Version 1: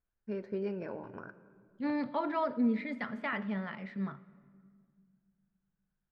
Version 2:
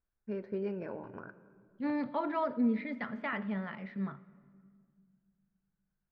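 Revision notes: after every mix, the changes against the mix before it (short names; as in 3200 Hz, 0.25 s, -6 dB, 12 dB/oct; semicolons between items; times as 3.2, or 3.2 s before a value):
master: add air absorption 130 m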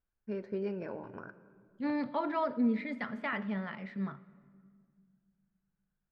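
master: remove air absorption 130 m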